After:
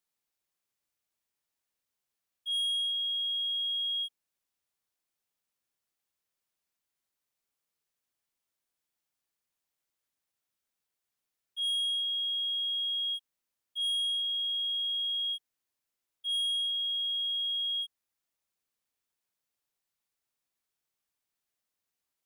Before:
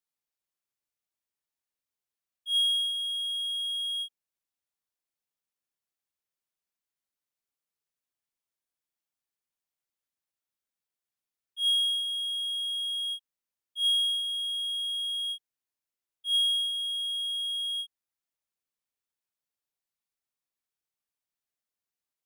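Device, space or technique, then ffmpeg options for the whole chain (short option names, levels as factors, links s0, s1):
saturation between pre-emphasis and de-emphasis: -af "highshelf=f=10000:g=9,asoftclip=type=tanh:threshold=0.0251,highshelf=f=10000:g=-9,volume=1.58"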